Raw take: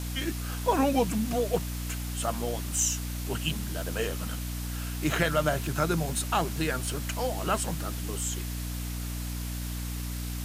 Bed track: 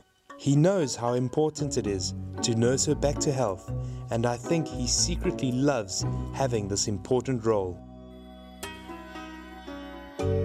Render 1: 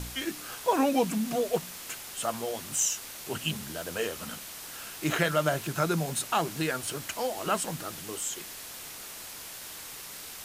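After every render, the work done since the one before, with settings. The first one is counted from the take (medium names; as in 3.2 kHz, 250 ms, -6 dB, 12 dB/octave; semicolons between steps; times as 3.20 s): de-hum 60 Hz, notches 5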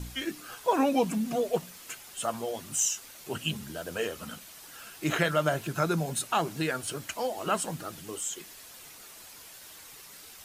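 noise reduction 8 dB, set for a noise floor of -43 dBFS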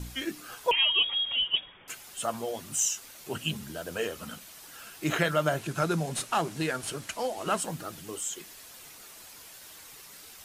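0.71–1.88 s: frequency inversion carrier 3.5 kHz; 5.59–7.58 s: CVSD coder 64 kbps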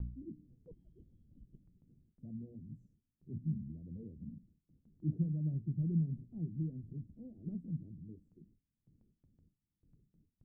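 inverse Chebyshev low-pass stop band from 1 kHz, stop band 70 dB; gate with hold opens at -58 dBFS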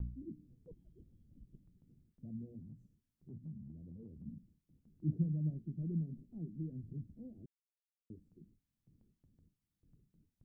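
2.61–4.26 s: compression 2.5:1, threshold -49 dBFS; 5.50–6.72 s: peaking EQ 110 Hz -14 dB; 7.46–8.10 s: mute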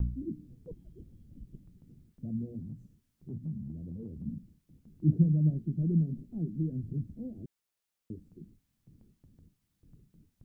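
trim +10 dB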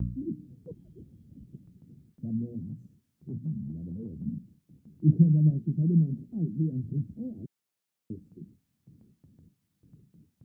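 high-pass 120 Hz 12 dB/octave; bass shelf 260 Hz +7.5 dB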